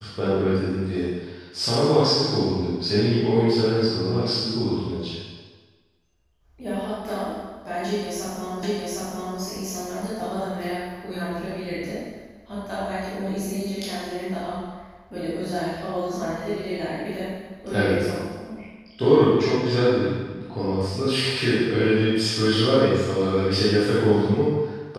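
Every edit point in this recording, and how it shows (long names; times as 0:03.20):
0:08.63: the same again, the last 0.76 s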